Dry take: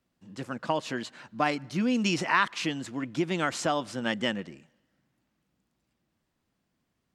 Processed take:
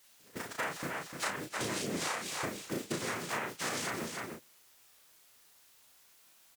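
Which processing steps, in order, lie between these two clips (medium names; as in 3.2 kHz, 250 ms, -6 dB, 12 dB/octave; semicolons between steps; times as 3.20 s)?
delay that grows with frequency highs early, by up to 461 ms; noise-vocoded speech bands 3; word length cut 8-bit, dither triangular; bass shelf 420 Hz -5.5 dB; gate -36 dBFS, range -21 dB; on a send: delay 326 ms -13 dB; on the sum: compression 16:1, threshold -39 dBFS, peak gain reduction 19.5 dB; doubling 38 ms -4 dB; speed mistake 44.1 kHz file played as 48 kHz; trim +5.5 dB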